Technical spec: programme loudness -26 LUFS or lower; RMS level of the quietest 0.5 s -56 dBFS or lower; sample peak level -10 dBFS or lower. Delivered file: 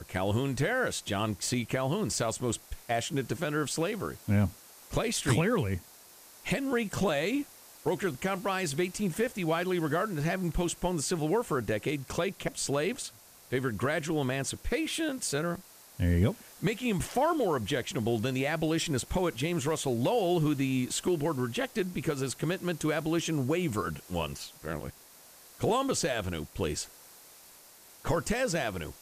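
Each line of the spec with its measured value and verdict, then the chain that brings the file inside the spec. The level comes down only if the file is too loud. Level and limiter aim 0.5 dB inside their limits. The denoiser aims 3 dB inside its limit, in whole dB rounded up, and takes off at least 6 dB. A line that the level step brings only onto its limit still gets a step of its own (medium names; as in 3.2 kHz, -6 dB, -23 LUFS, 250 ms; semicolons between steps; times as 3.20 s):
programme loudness -31.0 LUFS: pass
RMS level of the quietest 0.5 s -54 dBFS: fail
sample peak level -13.0 dBFS: pass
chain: noise reduction 6 dB, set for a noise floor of -54 dBFS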